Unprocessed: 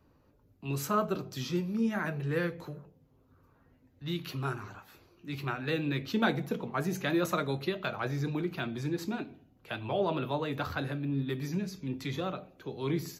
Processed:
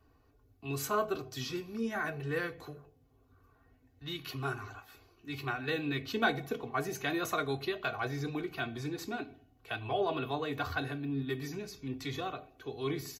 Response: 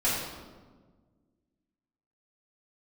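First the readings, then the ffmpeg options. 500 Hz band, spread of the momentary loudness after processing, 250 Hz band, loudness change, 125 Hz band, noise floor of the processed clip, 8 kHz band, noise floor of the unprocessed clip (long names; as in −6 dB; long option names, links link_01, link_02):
−2.0 dB, 11 LU, −5.0 dB, −2.5 dB, −5.5 dB, −67 dBFS, +0.5 dB, −66 dBFS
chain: -af "equalizer=frequency=340:width_type=o:width=0.28:gain=-9.5,aecho=1:1:2.7:0.8,volume=-2dB"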